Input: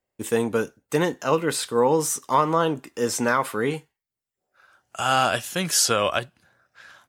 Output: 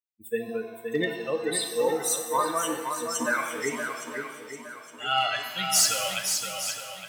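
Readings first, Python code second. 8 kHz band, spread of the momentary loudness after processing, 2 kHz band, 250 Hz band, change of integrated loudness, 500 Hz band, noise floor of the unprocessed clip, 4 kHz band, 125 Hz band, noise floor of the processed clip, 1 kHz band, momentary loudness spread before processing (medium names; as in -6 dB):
+0.5 dB, 13 LU, -1.5 dB, -7.5 dB, -4.0 dB, -6.0 dB, under -85 dBFS, 0.0 dB, -13.0 dB, -48 dBFS, -5.5 dB, 8 LU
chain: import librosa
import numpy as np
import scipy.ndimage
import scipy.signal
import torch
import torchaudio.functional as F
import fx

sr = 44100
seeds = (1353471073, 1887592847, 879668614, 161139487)

p1 = fx.bin_expand(x, sr, power=3.0)
p2 = fx.highpass(p1, sr, hz=760.0, slope=6)
p3 = fx.peak_eq(p2, sr, hz=970.0, db=-8.0, octaves=1.5)
p4 = fx.rider(p3, sr, range_db=4, speed_s=0.5)
p5 = p3 + (p4 * librosa.db_to_amplitude(-1.0))
p6 = np.clip(10.0 ** (16.0 / 20.0) * p5, -1.0, 1.0) / 10.0 ** (16.0 / 20.0)
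p7 = p6 + fx.echo_swing(p6, sr, ms=864, ratio=1.5, feedback_pct=33, wet_db=-6.5, dry=0)
y = fx.rev_shimmer(p7, sr, seeds[0], rt60_s=1.1, semitones=7, shimmer_db=-8, drr_db=5.0)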